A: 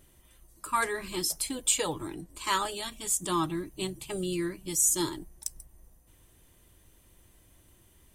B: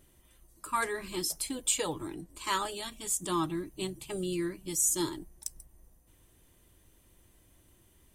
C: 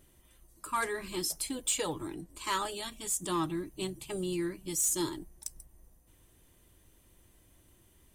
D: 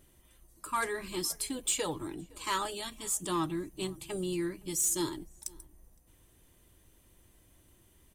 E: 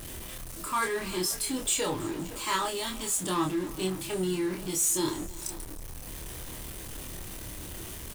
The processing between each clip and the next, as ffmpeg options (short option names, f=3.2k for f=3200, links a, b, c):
-af "equalizer=f=300:t=o:w=1.4:g=2,volume=-3dB"
-af "asoftclip=type=tanh:threshold=-21.5dB"
-filter_complex "[0:a]asplit=2[a][b];[b]adelay=513.1,volume=-25dB,highshelf=f=4k:g=-11.5[c];[a][c]amix=inputs=2:normalize=0"
-filter_complex "[0:a]aeval=exprs='val(0)+0.5*0.015*sgn(val(0))':c=same,asplit=2[a][b];[b]adelay=27,volume=-3dB[c];[a][c]amix=inputs=2:normalize=0,aecho=1:1:322:0.0891"